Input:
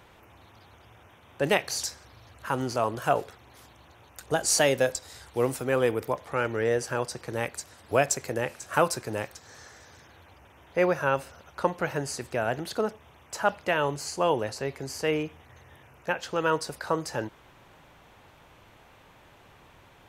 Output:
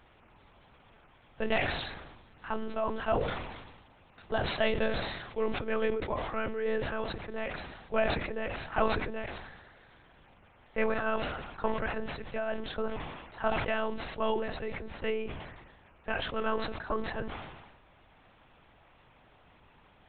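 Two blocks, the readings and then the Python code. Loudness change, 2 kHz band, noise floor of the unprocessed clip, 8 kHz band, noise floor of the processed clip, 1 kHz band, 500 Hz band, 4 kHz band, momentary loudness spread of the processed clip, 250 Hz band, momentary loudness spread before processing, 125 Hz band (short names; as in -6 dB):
-5.5 dB, -3.5 dB, -56 dBFS, under -40 dB, -61 dBFS, -5.0 dB, -5.0 dB, -4.5 dB, 14 LU, -3.5 dB, 10 LU, -6.0 dB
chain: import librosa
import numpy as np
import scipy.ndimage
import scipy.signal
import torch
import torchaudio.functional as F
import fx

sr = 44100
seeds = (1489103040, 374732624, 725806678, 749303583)

y = fx.lpc_monotone(x, sr, seeds[0], pitch_hz=220.0, order=10)
y = fx.sustainer(y, sr, db_per_s=45.0)
y = y * librosa.db_to_amplitude(-5.5)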